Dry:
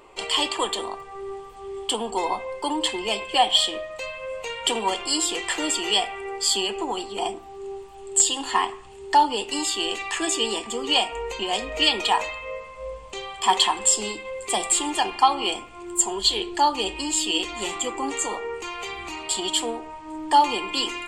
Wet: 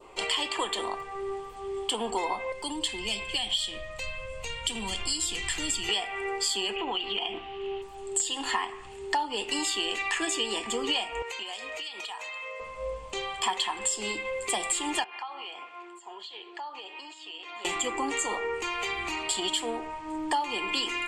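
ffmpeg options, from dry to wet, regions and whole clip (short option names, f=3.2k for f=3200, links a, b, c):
-filter_complex "[0:a]asettb=1/sr,asplit=3[a][b][c];[a]atrim=end=2.524[d];[b]atrim=start=2.52:end=5.89,asetpts=PTS-STARTPTS,afade=t=in:d=0.004:c=qsin,afade=t=out:st=3.366:d=0.004:c=qsin,asubboost=boost=6.5:cutoff=160,acrossover=split=240|3000[e][f][g];[f]acompressor=threshold=-42dB:ratio=3:attack=3.2:release=140:knee=2.83:detection=peak[h];[e][h][g]amix=inputs=3:normalize=0[i];[c]atrim=start=5.886[j];[d][i]acrossfade=d=0.004:c1=hsin:c2=qsin[k];[k][j]acrossfade=d=0.004:c1=qsin:c2=hsin,asettb=1/sr,asplit=3[l][m][n];[l]atrim=end=6.764[o];[m]atrim=start=6.76:end=7.82,asetpts=PTS-STARTPTS,afade=t=in:d=0.004:c=qsin,afade=t=out:st=1.056:d=0.004:c=qsin,lowpass=f=3k:t=q:w=5.6,acompressor=threshold=-28dB:ratio=4:attack=3.2:release=140:knee=1:detection=peak[p];[n]atrim=start=7.816[q];[o][p]acrossfade=d=0.004:c1=hsin:c2=qsin[r];[r][q]acrossfade=d=0.004:c1=qsin:c2=hsin,asettb=1/sr,asplit=3[s][t][u];[s]atrim=end=11.224[v];[t]atrim=start=11.22:end=12.6,asetpts=PTS-STARTPTS,afade=t=in:d=0.004:c=qsin,afade=t=out:st=1.376:d=0.004:c=qsin,highpass=f=1.2k:p=1,acompressor=threshold=-34dB:ratio=20:attack=3.2:release=140:knee=1:detection=peak[w];[u]atrim=start=12.596[x];[v][w]acrossfade=d=0.004:c1=hsin:c2=qsin[y];[y][x]acrossfade=d=0.004:c1=qsin:c2=hsin,asettb=1/sr,asplit=3[z][aa][ab];[z]atrim=end=15.044[ac];[aa]atrim=start=15.04:end=17.65,asetpts=PTS-STARTPTS,afade=t=in:d=0.004:c=qsin,afade=t=out:st=2.606:d=0.004:c=qsin,acompressor=threshold=-34dB:ratio=8:attack=3.2:release=140:knee=1:detection=peak,highpass=660,lowpass=3k[ad];[ab]atrim=start=17.646[ae];[ac][ad]acrossfade=d=0.004:c1=hsin:c2=qsin[af];[af][ae]acrossfade=d=0.004:c1=qsin:c2=hsin,adynamicequalizer=threshold=0.0112:dfrequency=2000:dqfactor=1.3:tfrequency=2000:tqfactor=1.3:attack=5:release=100:ratio=0.375:range=3:mode=boostabove:tftype=bell,acompressor=threshold=-26dB:ratio=6"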